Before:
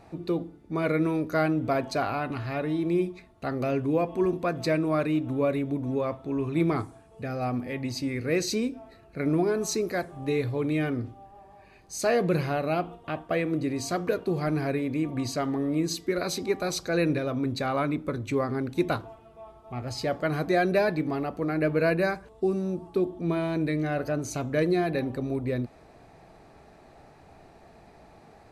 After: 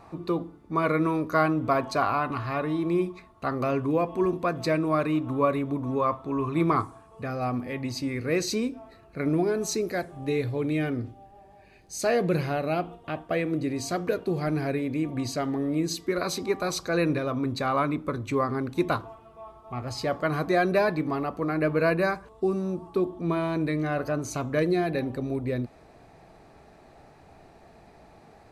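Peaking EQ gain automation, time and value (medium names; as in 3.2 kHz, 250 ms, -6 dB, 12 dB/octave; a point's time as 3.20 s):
peaking EQ 1.1 kHz 0.44 oct
+12.5 dB
from 3.91 s +6 dB
from 5.05 s +14 dB
from 7.30 s +5.5 dB
from 9.29 s -3 dB
from 11.11 s -9.5 dB
from 12.00 s -1.5 dB
from 15.99 s +8 dB
from 24.59 s 0 dB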